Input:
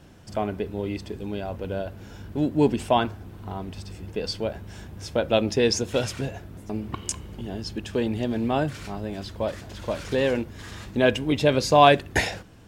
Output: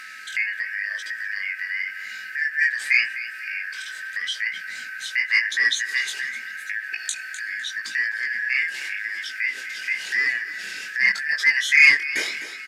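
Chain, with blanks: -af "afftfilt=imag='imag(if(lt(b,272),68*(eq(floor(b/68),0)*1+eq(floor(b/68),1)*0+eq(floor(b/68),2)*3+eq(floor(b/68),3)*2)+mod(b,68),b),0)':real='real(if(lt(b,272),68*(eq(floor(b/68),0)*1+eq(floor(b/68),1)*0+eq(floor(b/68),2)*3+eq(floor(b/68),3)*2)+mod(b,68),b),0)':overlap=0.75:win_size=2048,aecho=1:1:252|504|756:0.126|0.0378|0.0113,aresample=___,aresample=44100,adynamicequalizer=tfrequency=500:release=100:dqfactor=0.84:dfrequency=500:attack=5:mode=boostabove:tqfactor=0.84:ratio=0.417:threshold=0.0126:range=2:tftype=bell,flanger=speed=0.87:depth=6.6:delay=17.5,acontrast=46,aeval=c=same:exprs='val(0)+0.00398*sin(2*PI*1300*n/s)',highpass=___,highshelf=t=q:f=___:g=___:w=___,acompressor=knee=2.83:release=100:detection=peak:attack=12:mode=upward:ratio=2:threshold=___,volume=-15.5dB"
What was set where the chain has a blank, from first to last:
32000, 210, 1500, 13, 1.5, -8dB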